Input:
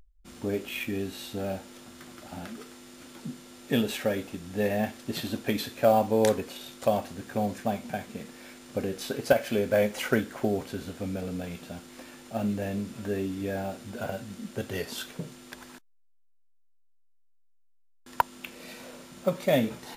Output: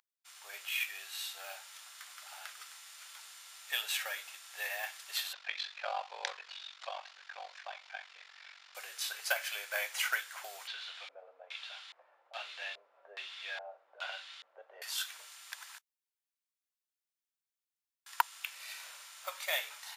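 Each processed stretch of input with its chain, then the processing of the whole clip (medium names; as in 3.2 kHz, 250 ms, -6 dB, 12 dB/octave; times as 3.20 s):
5.33–8.75 s: ring modulator 23 Hz + low-pass 4.9 kHz 24 dB/octave
10.67–14.82 s: block-companded coder 7-bit + LFO low-pass square 1.2 Hz 560–3600 Hz
whole clip: Bessel high-pass 1.4 kHz, order 6; level rider gain up to 3 dB; trim -1.5 dB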